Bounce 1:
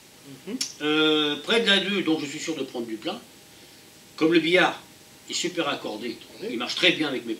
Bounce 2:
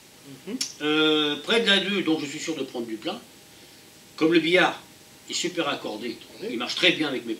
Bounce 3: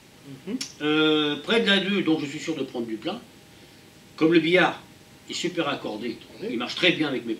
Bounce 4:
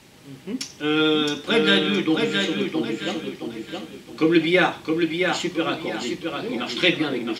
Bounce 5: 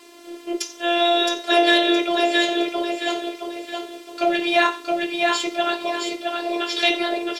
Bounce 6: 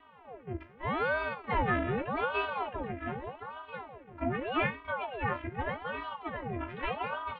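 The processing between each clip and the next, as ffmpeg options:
ffmpeg -i in.wav -af anull out.wav
ffmpeg -i in.wav -af "bass=frequency=250:gain=5,treble=frequency=4000:gain=-6" out.wav
ffmpeg -i in.wav -af "aecho=1:1:667|1334|2001|2668:0.596|0.203|0.0689|0.0234,volume=1dB" out.wav
ffmpeg -i in.wav -af "apsyclip=13dB,afreqshift=170,afftfilt=real='hypot(re,im)*cos(PI*b)':imag='0':win_size=512:overlap=0.75,volume=-6.5dB" out.wav
ffmpeg -i in.wav -af "asubboost=boost=10.5:cutoff=140,highpass=frequency=210:width_type=q:width=0.5412,highpass=frequency=210:width_type=q:width=1.307,lowpass=frequency=2200:width_type=q:width=0.5176,lowpass=frequency=2200:width_type=q:width=0.7071,lowpass=frequency=2200:width_type=q:width=1.932,afreqshift=-220,aeval=exprs='val(0)*sin(2*PI*650*n/s+650*0.7/0.83*sin(2*PI*0.83*n/s))':channel_layout=same,volume=-6.5dB" out.wav

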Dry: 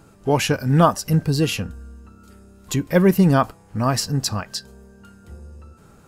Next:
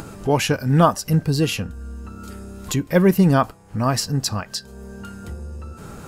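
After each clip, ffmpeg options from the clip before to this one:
ffmpeg -i in.wav -af "acompressor=mode=upward:threshold=-24dB:ratio=2.5" out.wav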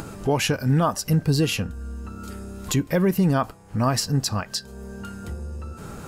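ffmpeg -i in.wav -af "alimiter=limit=-11.5dB:level=0:latency=1:release=119" out.wav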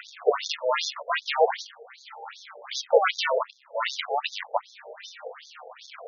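ffmpeg -i in.wav -af "acrusher=samples=39:mix=1:aa=0.000001:lfo=1:lforange=39:lforate=0.35,afftfilt=real='re*between(b*sr/1024,580*pow(4900/580,0.5+0.5*sin(2*PI*2.6*pts/sr))/1.41,580*pow(4900/580,0.5+0.5*sin(2*PI*2.6*pts/sr))*1.41)':imag='im*between(b*sr/1024,580*pow(4900/580,0.5+0.5*sin(2*PI*2.6*pts/sr))/1.41,580*pow(4900/580,0.5+0.5*sin(2*PI*2.6*pts/sr))*1.41)':win_size=1024:overlap=0.75,volume=8dB" out.wav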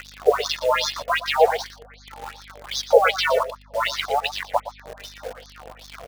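ffmpeg -i in.wav -filter_complex "[0:a]aeval=exprs='val(0)+0.00316*(sin(2*PI*50*n/s)+sin(2*PI*2*50*n/s)/2+sin(2*PI*3*50*n/s)/3+sin(2*PI*4*50*n/s)/4+sin(2*PI*5*50*n/s)/5)':channel_layout=same,asplit=2[link_01][link_02];[link_02]acrusher=bits=5:mix=0:aa=0.000001,volume=-3dB[link_03];[link_01][link_03]amix=inputs=2:normalize=0,aecho=1:1:117:0.224" out.wav

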